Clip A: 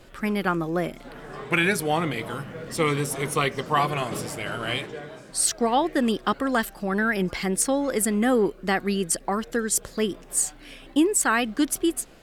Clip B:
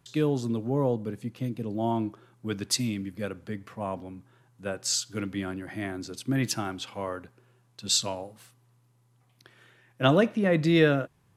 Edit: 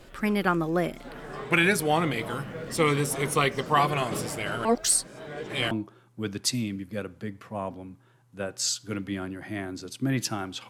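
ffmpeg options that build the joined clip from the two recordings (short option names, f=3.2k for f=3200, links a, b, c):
-filter_complex "[0:a]apad=whole_dur=10.69,atrim=end=10.69,asplit=2[a][b];[a]atrim=end=4.652[c];[b]atrim=start=4.648:end=5.712,asetpts=PTS-STARTPTS,areverse[d];[1:a]atrim=start=1.968:end=6.95[e];[c][d]acrossfade=d=0.004:c1=hsin:c2=hsin[f];[f][e]acrossfade=d=0.004:c1=hsin:c2=hsin"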